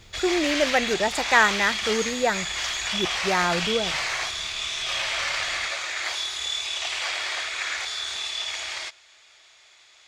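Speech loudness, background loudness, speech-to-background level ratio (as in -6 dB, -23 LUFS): -24.0 LUFS, -26.5 LUFS, 2.5 dB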